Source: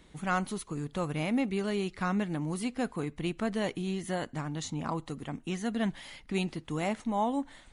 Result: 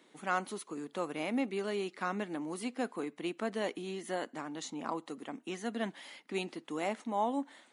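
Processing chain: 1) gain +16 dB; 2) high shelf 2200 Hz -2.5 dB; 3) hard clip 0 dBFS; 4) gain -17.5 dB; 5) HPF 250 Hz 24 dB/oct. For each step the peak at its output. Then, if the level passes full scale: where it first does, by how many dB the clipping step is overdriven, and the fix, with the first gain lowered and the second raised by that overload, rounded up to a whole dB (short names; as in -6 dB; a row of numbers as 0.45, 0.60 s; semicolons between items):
-1.5, -2.0, -2.0, -19.5, -19.0 dBFS; no overload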